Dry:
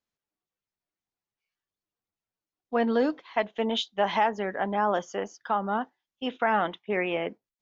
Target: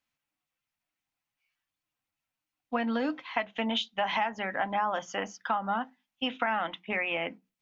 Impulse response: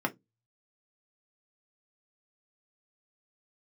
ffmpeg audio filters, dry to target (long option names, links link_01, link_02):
-filter_complex "[0:a]equalizer=frequency=160:width_type=o:width=0.67:gain=4,equalizer=frequency=400:width_type=o:width=0.67:gain=-12,equalizer=frequency=2500:width_type=o:width=0.67:gain=7,acompressor=threshold=-30dB:ratio=6,asplit=2[link_01][link_02];[1:a]atrim=start_sample=2205[link_03];[link_02][link_03]afir=irnorm=-1:irlink=0,volume=-14.5dB[link_04];[link_01][link_04]amix=inputs=2:normalize=0,volume=1.5dB"